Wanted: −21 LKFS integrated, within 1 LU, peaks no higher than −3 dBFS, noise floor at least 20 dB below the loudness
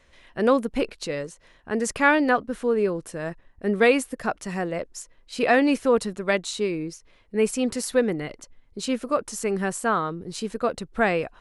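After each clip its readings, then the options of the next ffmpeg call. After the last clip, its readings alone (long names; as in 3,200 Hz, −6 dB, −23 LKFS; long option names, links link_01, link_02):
integrated loudness −24.5 LKFS; sample peak −5.5 dBFS; target loudness −21.0 LKFS
→ -af "volume=3.5dB,alimiter=limit=-3dB:level=0:latency=1"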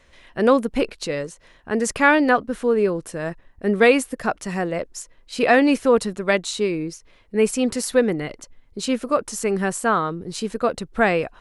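integrated loudness −21.0 LKFS; sample peak −3.0 dBFS; background noise floor −54 dBFS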